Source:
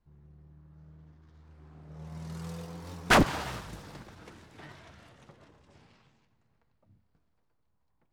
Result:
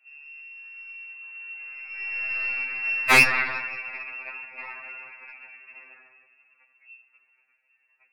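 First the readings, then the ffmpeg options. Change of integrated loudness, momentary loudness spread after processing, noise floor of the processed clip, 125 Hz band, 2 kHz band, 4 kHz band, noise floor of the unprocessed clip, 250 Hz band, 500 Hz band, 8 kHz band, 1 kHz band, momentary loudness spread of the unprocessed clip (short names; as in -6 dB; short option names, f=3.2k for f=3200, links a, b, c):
+5.5 dB, 24 LU, -69 dBFS, -7.0 dB, +12.0 dB, +4.5 dB, -74 dBFS, -7.0 dB, -2.0 dB, +5.0 dB, +2.0 dB, 24 LU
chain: -af "lowpass=f=2.4k:t=q:w=0.5098,lowpass=f=2.4k:t=q:w=0.6013,lowpass=f=2.4k:t=q:w=0.9,lowpass=f=2.4k:t=q:w=2.563,afreqshift=-2800,highpass=f=150:w=0.5412,highpass=f=150:w=1.3066,aeval=exprs='0.376*(cos(1*acos(clip(val(0)/0.376,-1,1)))-cos(1*PI/2))+0.0531*(cos(2*acos(clip(val(0)/0.376,-1,1)))-cos(2*PI/2))+0.075*(cos(4*acos(clip(val(0)/0.376,-1,1)))-cos(4*PI/2))+0.168*(cos(6*acos(clip(val(0)/0.376,-1,1)))-cos(6*PI/2))+0.106*(cos(8*acos(clip(val(0)/0.376,-1,1)))-cos(8*PI/2))':c=same,alimiter=level_in=13.5dB:limit=-1dB:release=50:level=0:latency=1,afftfilt=real='re*2.45*eq(mod(b,6),0)':imag='im*2.45*eq(mod(b,6),0)':win_size=2048:overlap=0.75"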